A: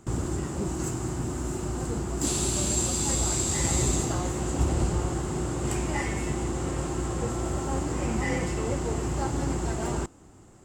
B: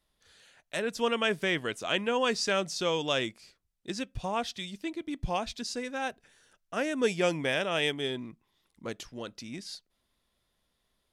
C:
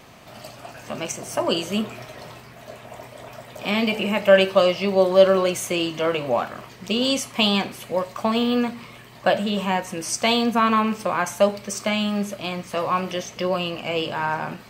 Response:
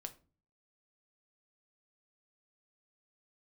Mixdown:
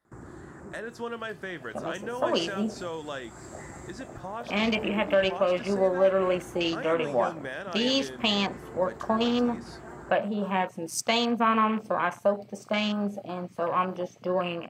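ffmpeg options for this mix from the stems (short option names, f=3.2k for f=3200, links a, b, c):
-filter_complex "[0:a]adelay=50,volume=-11.5dB[a];[1:a]volume=-0.5dB,asplit=2[b][c];[c]volume=-10dB[d];[2:a]afwtdn=0.0316,alimiter=limit=-9dB:level=0:latency=1:release=282,adelay=850,volume=-3dB[e];[a][b]amix=inputs=2:normalize=0,highshelf=f=2.3k:t=q:w=3:g=-10,acompressor=threshold=-36dB:ratio=6,volume=0dB[f];[3:a]atrim=start_sample=2205[g];[d][g]afir=irnorm=-1:irlink=0[h];[e][f][h]amix=inputs=3:normalize=0,highpass=f=150:p=1"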